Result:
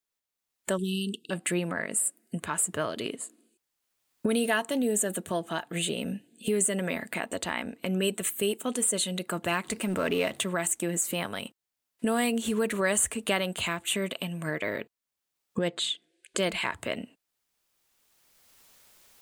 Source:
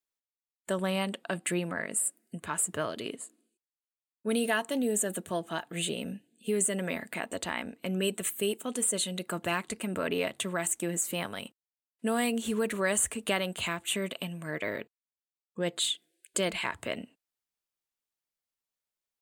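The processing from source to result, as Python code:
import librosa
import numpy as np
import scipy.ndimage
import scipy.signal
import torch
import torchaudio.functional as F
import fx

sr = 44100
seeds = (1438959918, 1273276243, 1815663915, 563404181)

y = fx.law_mismatch(x, sr, coded='mu', at=(9.65, 10.44))
y = fx.recorder_agc(y, sr, target_db=-23.0, rise_db_per_s=18.0, max_gain_db=30)
y = fx.brickwall_bandstop(y, sr, low_hz=460.0, high_hz=2600.0, at=(0.76, 1.3), fade=0.02)
y = fx.air_absorb(y, sr, metres=68.0, at=(15.68, 16.38))
y = y * librosa.db_to_amplitude(2.0)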